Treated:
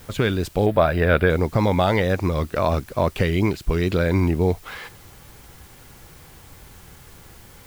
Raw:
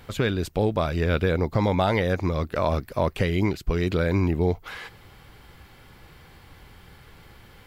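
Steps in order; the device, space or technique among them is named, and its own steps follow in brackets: plain cassette with noise reduction switched in (tape noise reduction on one side only decoder only; wow and flutter; white noise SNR 28 dB); 0.66–1.30 s: fifteen-band graphic EQ 630 Hz +7 dB, 1.6 kHz +7 dB, 6.3 kHz -12 dB; trim +3 dB

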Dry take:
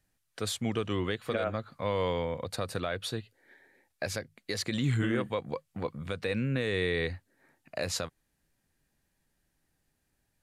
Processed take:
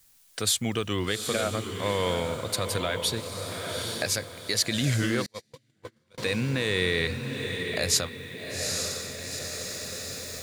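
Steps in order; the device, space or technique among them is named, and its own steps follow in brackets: bass shelf 84 Hz +2.5 dB; echo that smears into a reverb 815 ms, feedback 41%, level -7 dB; cheap recorder with automatic gain (white noise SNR 40 dB; recorder AGC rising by 5.8 dB/s); 5.26–6.18 s: gate -27 dBFS, range -38 dB; treble shelf 3 kHz +12 dB; trim +1.5 dB

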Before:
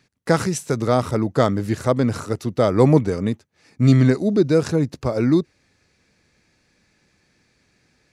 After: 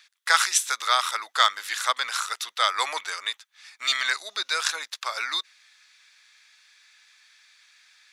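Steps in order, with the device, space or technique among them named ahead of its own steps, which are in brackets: headphones lying on a table (high-pass 1.2 kHz 24 dB/octave; peaking EQ 3.5 kHz +9.5 dB 0.25 oct); trim +7.5 dB

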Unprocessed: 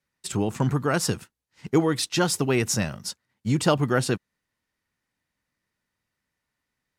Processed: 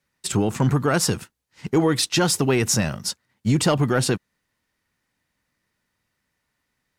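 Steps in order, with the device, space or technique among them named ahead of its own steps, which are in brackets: soft clipper into limiter (saturation -11 dBFS, distortion -23 dB; peak limiter -17 dBFS, peak gain reduction 5 dB); trim +6 dB

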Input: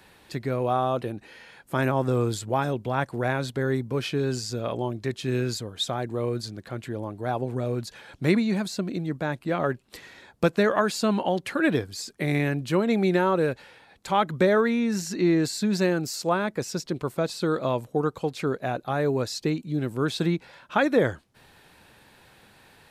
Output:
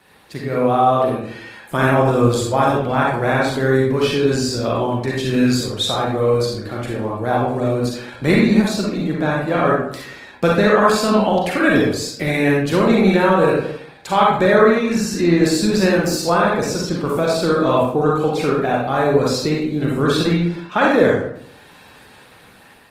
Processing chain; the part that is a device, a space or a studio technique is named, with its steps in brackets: far-field microphone of a smart speaker (reverberation RT60 0.65 s, pre-delay 36 ms, DRR -3.5 dB; high-pass 97 Hz 6 dB/octave; level rider gain up to 4.5 dB; trim +1.5 dB; Opus 20 kbps 48 kHz)

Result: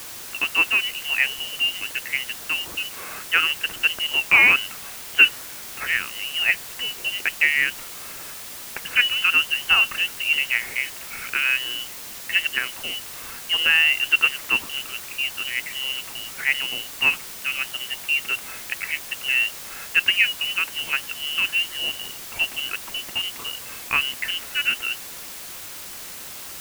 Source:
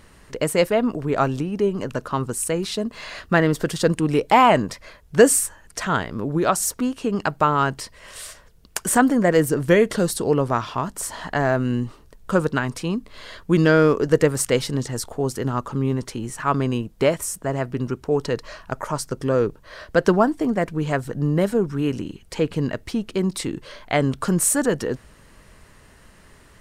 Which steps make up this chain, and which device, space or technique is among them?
scrambled radio voice (band-pass 360–2900 Hz; frequency inversion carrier 3.2 kHz; white noise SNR 12 dB)

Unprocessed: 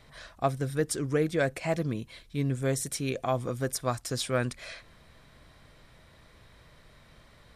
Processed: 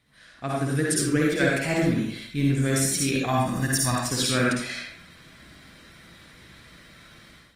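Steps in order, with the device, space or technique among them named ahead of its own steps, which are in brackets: 3.25–4.00 s: comb 1.1 ms, depth 82%; high-order bell 690 Hz -8.5 dB; far-field microphone of a smart speaker (reverberation RT60 0.60 s, pre-delay 50 ms, DRR -3 dB; high-pass 130 Hz 6 dB/octave; level rider gain up to 13.5 dB; trim -7 dB; Opus 32 kbps 48 kHz)

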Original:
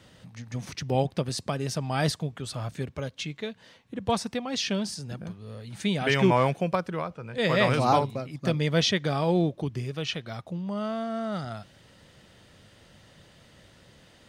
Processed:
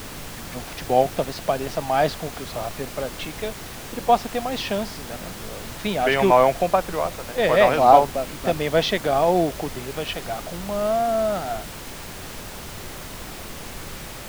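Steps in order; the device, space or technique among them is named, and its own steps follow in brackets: horn gramophone (band-pass 240–3500 Hz; peaking EQ 700 Hz +10 dB 0.57 oct; wow and flutter; pink noise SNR 12 dB); trim +3.5 dB

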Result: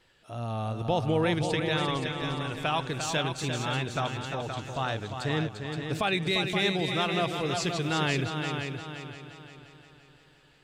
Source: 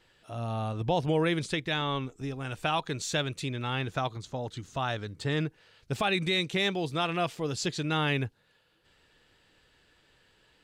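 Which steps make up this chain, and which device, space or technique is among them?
multi-head tape echo (multi-head delay 174 ms, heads second and third, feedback 45%, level -7 dB; wow and flutter 24 cents)

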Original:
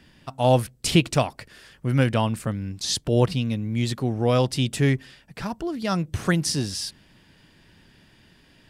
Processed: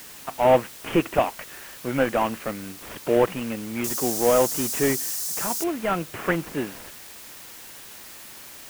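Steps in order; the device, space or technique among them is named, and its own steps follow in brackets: army field radio (band-pass 340–3100 Hz; CVSD coder 16 kbps; white noise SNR 17 dB); 3.84–5.64 s: resonant high shelf 4 kHz +14 dB, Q 1.5; trim +5.5 dB

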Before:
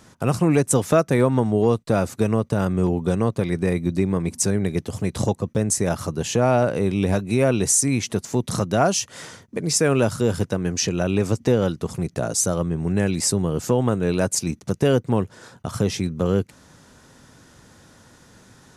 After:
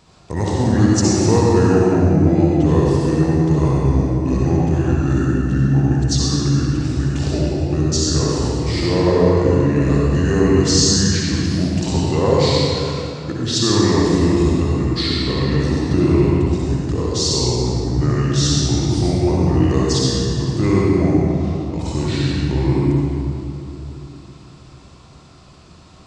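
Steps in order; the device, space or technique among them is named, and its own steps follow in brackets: slowed and reverbed (tape speed -28%; reverberation RT60 2.8 s, pre-delay 53 ms, DRR -5 dB); trim -2 dB

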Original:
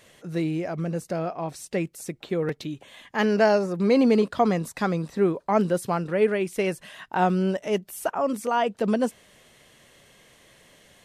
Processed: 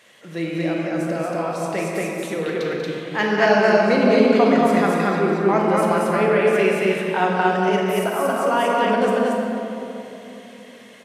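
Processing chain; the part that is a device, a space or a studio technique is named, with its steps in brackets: stadium PA (high-pass 170 Hz 12 dB/octave; peaking EQ 2 kHz +6.5 dB 2.7 oct; loudspeakers at several distances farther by 65 m -10 dB, 79 m -1 dB; reverberation RT60 3.2 s, pre-delay 22 ms, DRR -0.5 dB); trim -2.5 dB

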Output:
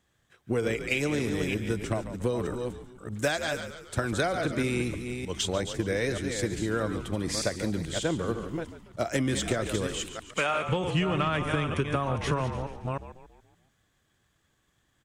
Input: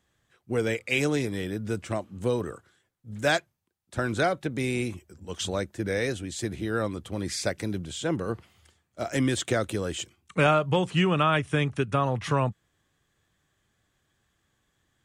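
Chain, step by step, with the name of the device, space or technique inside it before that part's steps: chunks repeated in reverse 309 ms, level -8 dB; 3.19–4.42 s: treble shelf 5 kHz +5.5 dB; 9.87–10.69 s: high-pass 900 Hz 6 dB/octave; frequency-shifting echo 142 ms, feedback 49%, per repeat -59 Hz, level -13 dB; drum-bus smash (transient shaper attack +6 dB, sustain +2 dB; compression 6:1, threshold -22 dBFS, peak gain reduction 8 dB; saturation -15 dBFS, distortion -22 dB)

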